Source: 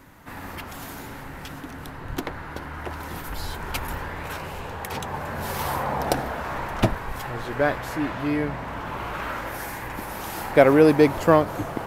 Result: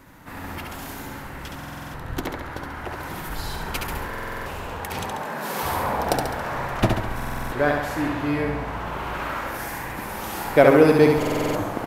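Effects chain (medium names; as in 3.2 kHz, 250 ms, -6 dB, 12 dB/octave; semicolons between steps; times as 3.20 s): 5.04–5.63 s: steep high-pass 160 Hz; feedback delay 69 ms, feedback 53%, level -4 dB; buffer glitch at 1.57/4.09/7.15/11.18 s, samples 2048, times 7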